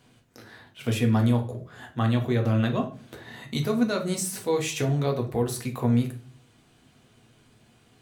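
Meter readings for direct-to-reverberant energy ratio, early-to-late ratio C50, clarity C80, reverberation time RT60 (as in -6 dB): 2.0 dB, 12.0 dB, 17.5 dB, 0.40 s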